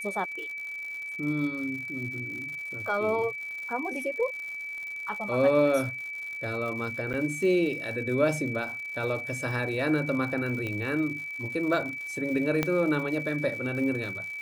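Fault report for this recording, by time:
surface crackle 150 per second −37 dBFS
whistle 2,300 Hz −34 dBFS
0:07.13–0:07.14: drop-out 8.9 ms
0:10.67: click −21 dBFS
0:12.63: click −11 dBFS

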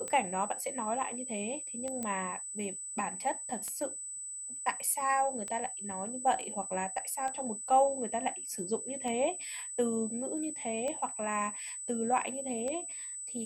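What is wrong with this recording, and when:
scratch tick 33 1/3 rpm −24 dBFS
whistle 8,000 Hz −39 dBFS
0:02.03: click −22 dBFS

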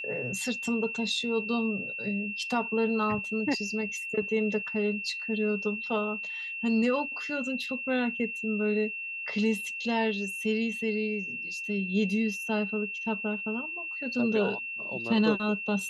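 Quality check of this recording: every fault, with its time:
whistle 2,700 Hz −34 dBFS

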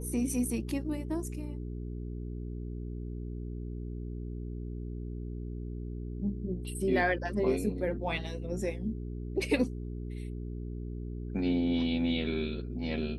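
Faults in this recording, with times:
mains hum 60 Hz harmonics 7 −38 dBFS

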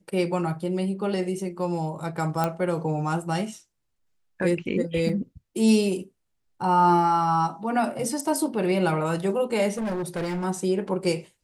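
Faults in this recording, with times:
0:02.44: click −11 dBFS
0:05.09: drop-out 2.5 ms
0:09.77–0:10.45: clipping −25.5 dBFS

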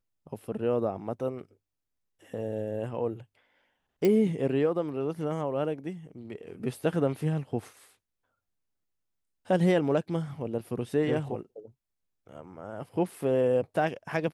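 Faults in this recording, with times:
0:04.05: click −14 dBFS

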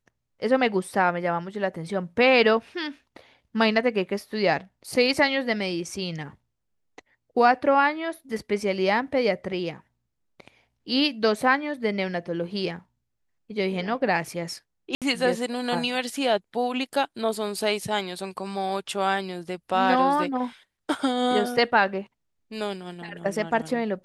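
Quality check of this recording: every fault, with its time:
0:14.95–0:15.02: drop-out 67 ms

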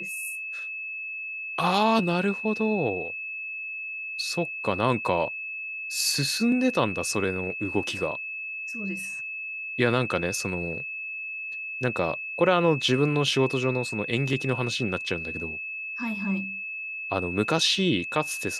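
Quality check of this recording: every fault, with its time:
whistle 2,600 Hz −32 dBFS

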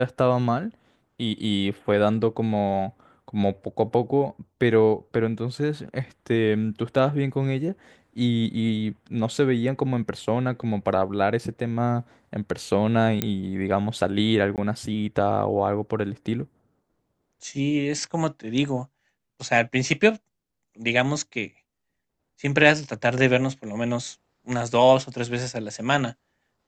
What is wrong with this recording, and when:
0:13.22: click −8 dBFS
0:14.56–0:14.58: drop-out 18 ms

